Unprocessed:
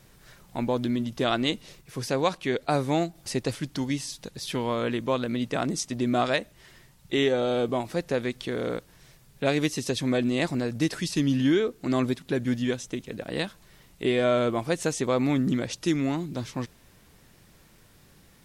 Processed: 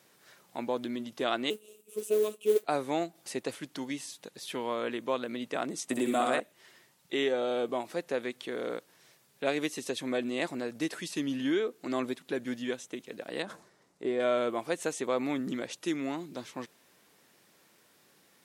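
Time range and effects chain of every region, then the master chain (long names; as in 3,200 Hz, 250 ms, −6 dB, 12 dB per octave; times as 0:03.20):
0:01.50–0:02.64: drawn EQ curve 290 Hz 0 dB, 430 Hz +14 dB, 800 Hz −21 dB, 1,200 Hz −8 dB, 1,900 Hz −29 dB, 2,700 Hz +1 dB, 4,800 Hz −16 dB, 7,800 Hz +6 dB + noise that follows the level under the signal 20 dB + phases set to zero 213 Hz
0:05.89–0:06.40: high shelf with overshoot 6,800 Hz +6.5 dB, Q 3 + flutter between parallel walls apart 10.8 metres, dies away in 0.88 s + multiband upward and downward compressor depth 100%
0:13.42–0:14.20: low-pass filter 6,500 Hz + parametric band 3,000 Hz −13.5 dB 1.4 octaves + level that may fall only so fast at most 81 dB per second
whole clip: high-pass filter 300 Hz 12 dB per octave; dynamic equaliser 5,100 Hz, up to −6 dB, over −51 dBFS, Q 2.1; level −4 dB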